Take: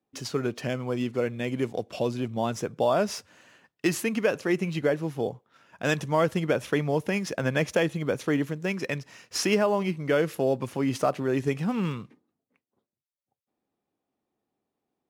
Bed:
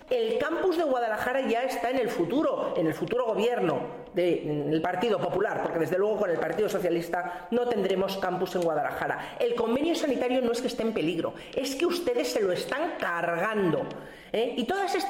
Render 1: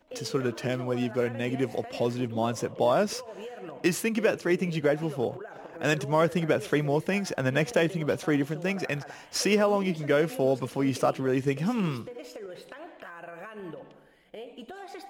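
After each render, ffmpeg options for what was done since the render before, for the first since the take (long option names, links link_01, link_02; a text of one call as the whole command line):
ffmpeg -i in.wav -i bed.wav -filter_complex "[1:a]volume=-15dB[link_01];[0:a][link_01]amix=inputs=2:normalize=0" out.wav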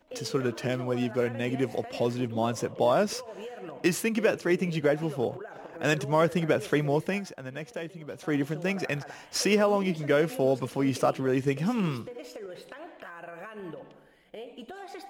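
ffmpeg -i in.wav -filter_complex "[0:a]asplit=3[link_01][link_02][link_03];[link_01]atrim=end=7.33,asetpts=PTS-STARTPTS,afade=type=out:start_time=6.92:duration=0.41:curve=qsin:silence=0.237137[link_04];[link_02]atrim=start=7.33:end=8.14,asetpts=PTS-STARTPTS,volume=-12.5dB[link_05];[link_03]atrim=start=8.14,asetpts=PTS-STARTPTS,afade=type=in:duration=0.41:curve=qsin:silence=0.237137[link_06];[link_04][link_05][link_06]concat=n=3:v=0:a=1" out.wav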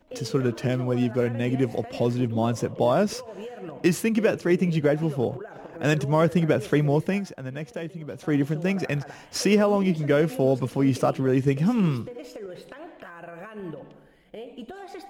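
ffmpeg -i in.wav -af "lowshelf=frequency=300:gain=9" out.wav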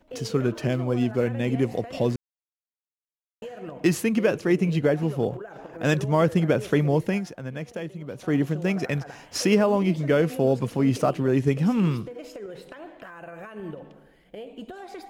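ffmpeg -i in.wav -filter_complex "[0:a]asplit=3[link_01][link_02][link_03];[link_01]atrim=end=2.16,asetpts=PTS-STARTPTS,afade=type=out:start_time=2.156:duration=0.004:curve=hsin[link_04];[link_02]atrim=start=2.16:end=3.42,asetpts=PTS-STARTPTS,volume=0[link_05];[link_03]atrim=start=3.42,asetpts=PTS-STARTPTS,afade=type=in:duration=0.004:curve=hsin[link_06];[link_04][link_05][link_06]concat=n=3:v=0:a=1" out.wav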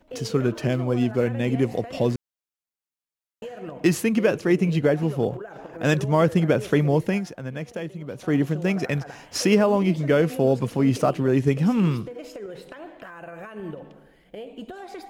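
ffmpeg -i in.wav -af "volume=1.5dB" out.wav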